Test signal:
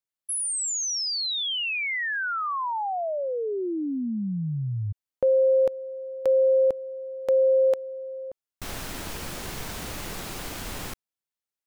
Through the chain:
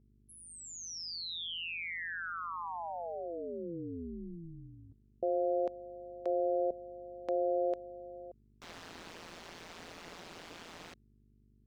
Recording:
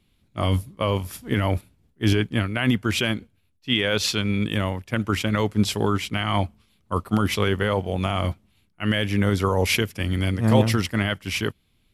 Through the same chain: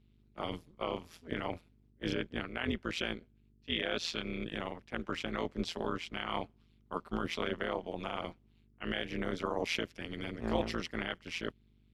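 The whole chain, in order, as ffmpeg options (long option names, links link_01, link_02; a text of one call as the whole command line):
ffmpeg -i in.wav -filter_complex "[0:a]acrossover=split=170 6400:gain=0.0708 1 0.112[link_01][link_02][link_03];[link_01][link_02][link_03]amix=inputs=3:normalize=0,aeval=exprs='val(0)+0.00224*(sin(2*PI*50*n/s)+sin(2*PI*2*50*n/s)/2+sin(2*PI*3*50*n/s)/3+sin(2*PI*4*50*n/s)/4+sin(2*PI*5*50*n/s)/5)':channel_layout=same,tremolo=f=170:d=0.974,volume=-7.5dB" out.wav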